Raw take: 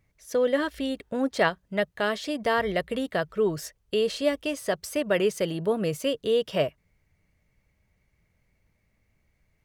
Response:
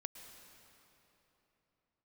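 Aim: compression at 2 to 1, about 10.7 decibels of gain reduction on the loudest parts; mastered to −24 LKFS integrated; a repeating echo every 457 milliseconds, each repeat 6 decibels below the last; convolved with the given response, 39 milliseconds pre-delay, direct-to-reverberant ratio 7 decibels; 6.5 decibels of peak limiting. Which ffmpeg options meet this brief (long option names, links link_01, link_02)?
-filter_complex "[0:a]acompressor=threshold=-39dB:ratio=2,alimiter=level_in=3.5dB:limit=-24dB:level=0:latency=1,volume=-3.5dB,aecho=1:1:457|914|1371|1828|2285|2742:0.501|0.251|0.125|0.0626|0.0313|0.0157,asplit=2[link_01][link_02];[1:a]atrim=start_sample=2205,adelay=39[link_03];[link_02][link_03]afir=irnorm=-1:irlink=0,volume=-4dB[link_04];[link_01][link_04]amix=inputs=2:normalize=0,volume=12.5dB"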